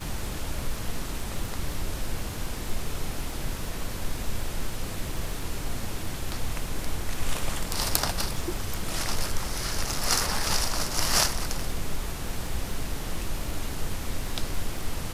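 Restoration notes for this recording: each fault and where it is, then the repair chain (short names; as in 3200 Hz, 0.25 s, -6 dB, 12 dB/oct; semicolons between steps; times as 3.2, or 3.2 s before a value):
crackle 30/s -34 dBFS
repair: de-click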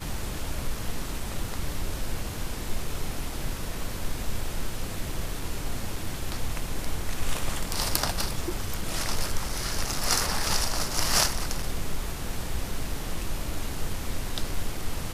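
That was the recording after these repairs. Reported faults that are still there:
none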